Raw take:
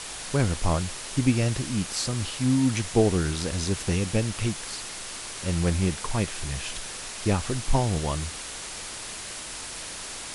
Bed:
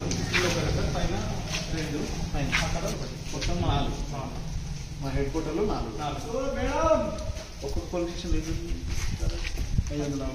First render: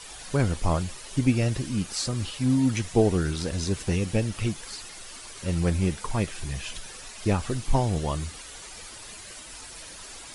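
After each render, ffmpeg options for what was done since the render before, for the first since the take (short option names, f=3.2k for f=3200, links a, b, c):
-af "afftdn=nr=10:nf=-38"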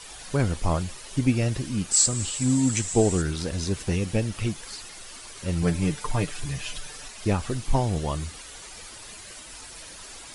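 -filter_complex "[0:a]asettb=1/sr,asplit=3[a][b][c];[a]atrim=end=1.914[d];[b]atrim=start=1.91:end=3.22,asetpts=PTS-STARTPTS,afade=t=in:d=0.004:c=qsin,afade=t=out:st=1.306:d=0.004:c=qsin,lowpass=f=7.8k:t=q:w=9.6[e];[c]atrim=start=3.216[f];[d][e]acrossfade=d=0.004:c1=hsin:c2=qsin[g];[g][f]acrossfade=d=0.004:c1=qsin:c2=hsin,asettb=1/sr,asplit=3[h][i][j];[h]atrim=end=5.624[k];[i]atrim=start=5.62:end=7.08,asetpts=PTS-STARTPTS,afade=t=in:d=0.004:c=qsin,afade=t=out:st=1.456:d=0.004:c=qsin,aecho=1:1:6.8:0.65,atrim=end_sample=64386[l];[j]atrim=start=7.076[m];[k][l]acrossfade=d=0.004:c1=hsin:c2=qsin[n];[n][m]acrossfade=d=0.004:c1=qsin:c2=hsin"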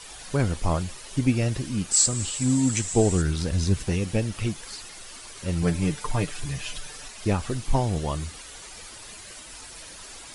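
-filter_complex "[0:a]asettb=1/sr,asplit=3[a][b][c];[a]atrim=end=2.884[d];[b]atrim=start=2.88:end=3.85,asetpts=PTS-STARTPTS,afade=t=in:d=0.004:c=qsin,afade=t=out:st=0.966:d=0.004:c=qsin,asubboost=boost=6:cutoff=240[e];[c]atrim=start=3.846[f];[d][e]acrossfade=d=0.004:c1=hsin:c2=qsin[g];[g][f]acrossfade=d=0.004:c1=qsin:c2=hsin"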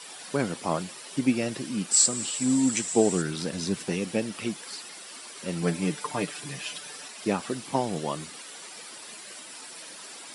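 -af "highpass=f=180:w=0.5412,highpass=f=180:w=1.3066,bandreject=f=6.5k:w=13"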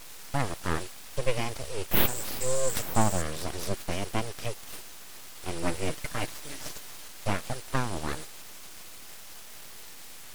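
-af "aeval=exprs='abs(val(0))':c=same"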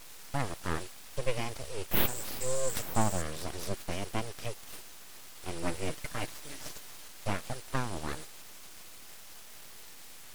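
-af "volume=-4dB"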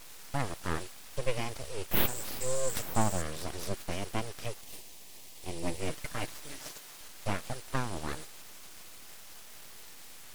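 -filter_complex "[0:a]asettb=1/sr,asplit=3[a][b][c];[a]atrim=end=4.614[d];[b]atrim=start=4.61:end=5.8,asetpts=PTS-STARTPTS,afade=t=in:d=0.004:c=qsin,afade=t=out:st=1.186:d=0.004:c=qsin,equalizer=f=1.4k:w=2.3:g=-12.5[e];[c]atrim=start=5.796[f];[d][e]acrossfade=d=0.004:c1=hsin:c2=qsin[g];[g][f]acrossfade=d=0.004:c1=qsin:c2=hsin,asettb=1/sr,asplit=3[h][i][j];[h]atrim=end=6.584[k];[i]atrim=start=6.58:end=7.01,asetpts=PTS-STARTPTS,afade=t=in:d=0.004:c=qsin,afade=t=out:st=0.426:d=0.004:c=qsin,lowshelf=f=140:g=-9.5[l];[j]atrim=start=7.006[m];[k][l]acrossfade=d=0.004:c1=hsin:c2=qsin[n];[n][m]acrossfade=d=0.004:c1=qsin:c2=hsin"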